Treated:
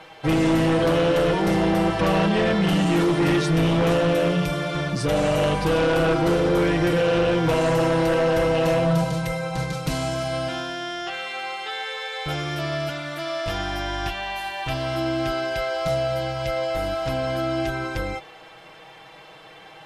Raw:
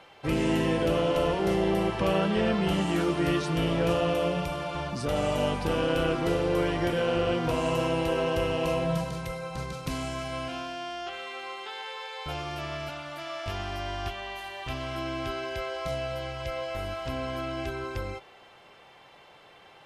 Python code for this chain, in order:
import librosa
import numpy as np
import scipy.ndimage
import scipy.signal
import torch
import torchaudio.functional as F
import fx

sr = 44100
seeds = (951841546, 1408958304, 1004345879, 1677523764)

y = x + 0.75 * np.pad(x, (int(6.3 * sr / 1000.0), 0))[:len(x)]
y = fx.fold_sine(y, sr, drive_db=5, ceiling_db=-13.0)
y = fx.dmg_noise_colour(y, sr, seeds[0], colour='white', level_db=-70.0, at=(14.19, 16.58), fade=0.02)
y = y * 10.0 ** (-2.5 / 20.0)